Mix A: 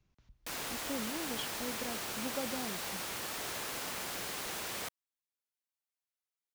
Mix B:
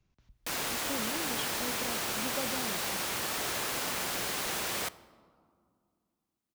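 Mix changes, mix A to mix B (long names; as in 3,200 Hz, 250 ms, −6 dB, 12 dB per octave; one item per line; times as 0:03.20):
background +5.0 dB
reverb: on, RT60 2.2 s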